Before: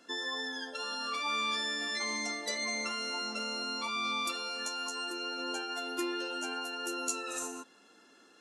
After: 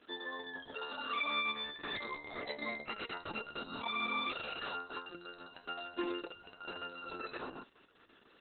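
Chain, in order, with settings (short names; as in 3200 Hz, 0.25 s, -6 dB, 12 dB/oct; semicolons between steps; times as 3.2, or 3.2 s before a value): gain -1.5 dB; Opus 6 kbps 48000 Hz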